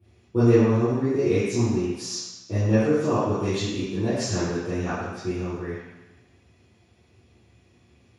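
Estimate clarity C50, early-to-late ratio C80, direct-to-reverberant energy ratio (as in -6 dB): -3.0 dB, 0.5 dB, -16.5 dB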